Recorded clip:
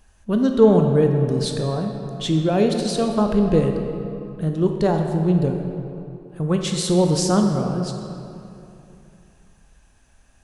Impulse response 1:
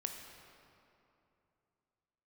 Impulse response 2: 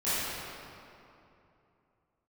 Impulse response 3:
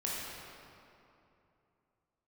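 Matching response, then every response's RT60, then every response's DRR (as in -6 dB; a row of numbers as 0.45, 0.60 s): 1; 2.8, 2.8, 2.8 s; 3.5, -16.0, -6.0 dB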